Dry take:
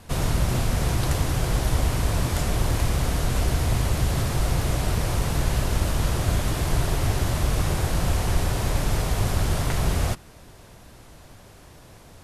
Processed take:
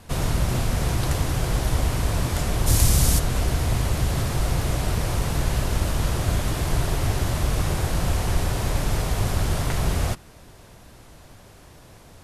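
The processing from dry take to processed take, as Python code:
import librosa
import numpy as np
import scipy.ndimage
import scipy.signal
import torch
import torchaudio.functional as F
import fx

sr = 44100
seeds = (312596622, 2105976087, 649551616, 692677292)

y = fx.bass_treble(x, sr, bass_db=5, treble_db=14, at=(2.66, 3.18), fade=0.02)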